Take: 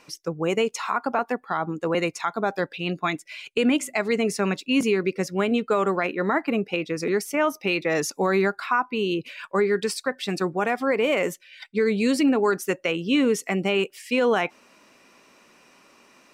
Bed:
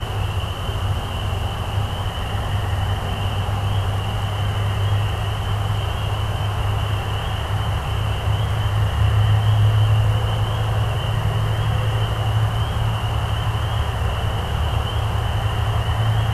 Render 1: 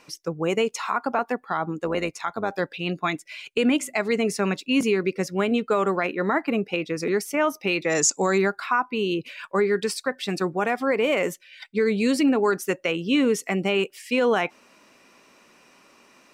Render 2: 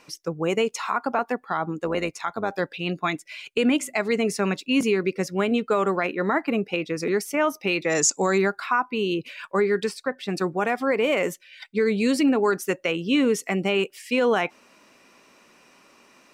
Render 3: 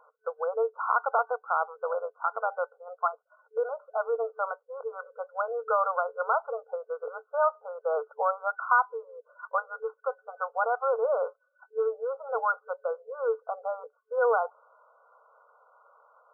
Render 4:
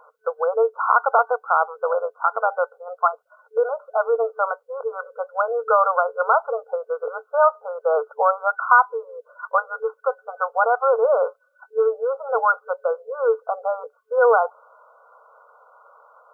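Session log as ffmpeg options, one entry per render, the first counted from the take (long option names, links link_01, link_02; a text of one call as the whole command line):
ffmpeg -i in.wav -filter_complex "[0:a]asplit=3[link_01][link_02][link_03];[link_01]afade=type=out:start_time=1.85:duration=0.02[link_04];[link_02]tremolo=f=100:d=0.519,afade=type=in:start_time=1.85:duration=0.02,afade=type=out:start_time=2.5:duration=0.02[link_05];[link_03]afade=type=in:start_time=2.5:duration=0.02[link_06];[link_04][link_05][link_06]amix=inputs=3:normalize=0,asettb=1/sr,asplit=3[link_07][link_08][link_09];[link_07]atrim=end=7.844[link_10];[link_08]atrim=start=7.84:end=8.38,asetpts=PTS-STARTPTS,afade=type=in:duration=0.004:curve=qsin,afade=type=out:start_time=0.536:duration=0.004:curve=qsin,lowpass=frequency=7400:width_type=q:width=8.8[link_11];[link_09]atrim=start=8.376[link_12];[link_10][link_11]acrossfade=duration=0.004:curve1=hsin:curve2=qsin[link_13];[link_13][link_12]acrossfade=duration=0.004:curve1=qsin:curve2=hsin" out.wav
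ffmpeg -i in.wav -filter_complex "[0:a]asettb=1/sr,asplit=3[link_01][link_02][link_03];[link_01]atrim=end=9.894[link_04];[link_02]atrim=start=9.89:end=10.37,asetpts=PTS-STARTPTS,afade=type=in:duration=0.004:curve=qsin,afade=type=out:start_time=0.476:duration=0.004:curve=qsin,highshelf=frequency=3000:gain=-9.5[link_05];[link_03]atrim=start=10.366[link_06];[link_04][link_05]acrossfade=duration=0.004:curve1=hsin:curve2=qsin[link_07];[link_07][link_06]acrossfade=duration=0.004:curve1=qsin:curve2=hsin" out.wav
ffmpeg -i in.wav -af "afftfilt=real='re*between(b*sr/4096,440,1500)':imag='im*between(b*sr/4096,440,1500)':win_size=4096:overlap=0.75,aemphasis=mode=production:type=riaa" out.wav
ffmpeg -i in.wav -af "volume=8.5dB" out.wav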